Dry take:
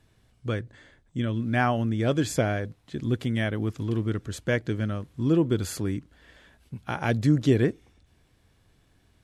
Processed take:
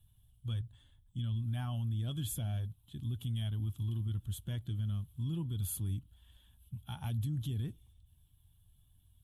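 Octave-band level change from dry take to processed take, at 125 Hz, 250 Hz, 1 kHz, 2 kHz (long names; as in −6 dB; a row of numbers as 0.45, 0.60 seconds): −6.5 dB, −17.5 dB, −21.0 dB, below −25 dB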